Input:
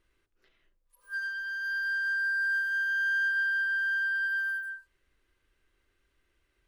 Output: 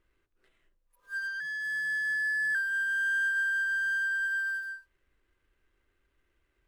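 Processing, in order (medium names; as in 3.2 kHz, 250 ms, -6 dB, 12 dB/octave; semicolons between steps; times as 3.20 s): median filter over 9 samples; 1.40–2.55 s: frequency shift +140 Hz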